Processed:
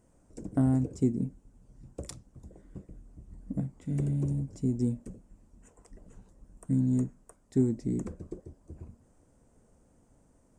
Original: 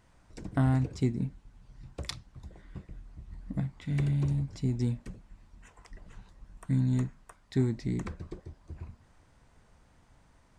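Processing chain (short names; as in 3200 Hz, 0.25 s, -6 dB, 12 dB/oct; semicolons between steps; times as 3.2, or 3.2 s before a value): ten-band EQ 250 Hz +7 dB, 500 Hz +7 dB, 1000 Hz -4 dB, 2000 Hz -7 dB, 4000 Hz -12 dB, 8000 Hz +10 dB; gain -4 dB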